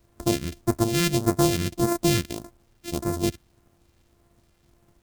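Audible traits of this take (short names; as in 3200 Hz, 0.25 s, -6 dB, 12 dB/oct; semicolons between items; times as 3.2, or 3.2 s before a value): a buzz of ramps at a fixed pitch in blocks of 128 samples; phasing stages 2, 1.7 Hz, lowest notch 780–2900 Hz; a quantiser's noise floor 12-bit, dither none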